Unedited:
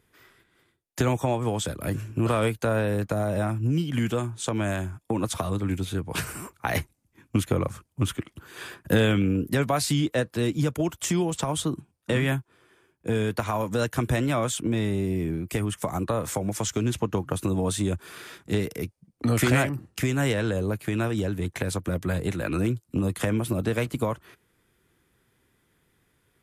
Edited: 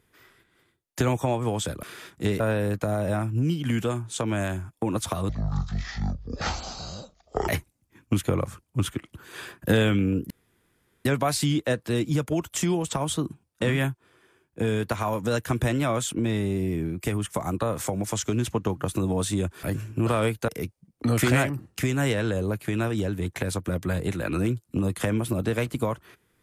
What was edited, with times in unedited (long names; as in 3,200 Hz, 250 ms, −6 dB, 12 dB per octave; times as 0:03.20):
0:01.83–0:02.68: swap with 0:18.11–0:18.68
0:05.57–0:06.71: play speed 52%
0:09.53: splice in room tone 0.75 s